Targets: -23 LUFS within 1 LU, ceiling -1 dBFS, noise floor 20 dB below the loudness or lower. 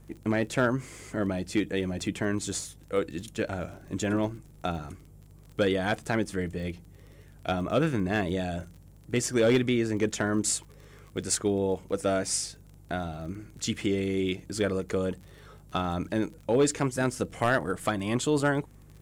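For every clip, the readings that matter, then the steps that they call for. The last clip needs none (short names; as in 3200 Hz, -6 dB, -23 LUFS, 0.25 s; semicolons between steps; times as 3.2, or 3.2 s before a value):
ticks 33/s; hum 50 Hz; harmonics up to 150 Hz; hum level -52 dBFS; loudness -29.0 LUFS; peak -15.5 dBFS; loudness target -23.0 LUFS
-> de-click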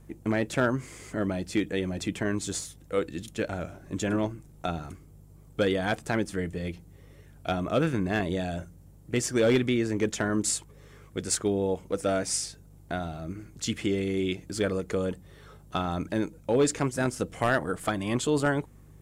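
ticks 0/s; hum 50 Hz; harmonics up to 150 Hz; hum level -52 dBFS
-> de-hum 50 Hz, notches 3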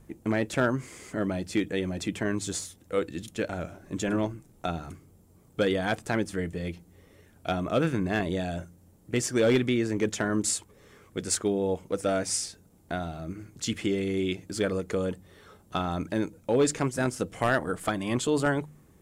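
hum none; loudness -29.5 LUFS; peak -13.0 dBFS; loudness target -23.0 LUFS
-> gain +6.5 dB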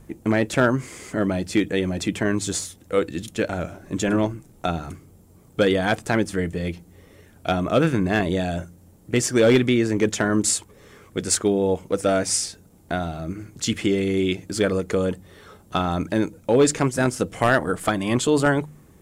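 loudness -23.0 LUFS; peak -6.5 dBFS; noise floor -52 dBFS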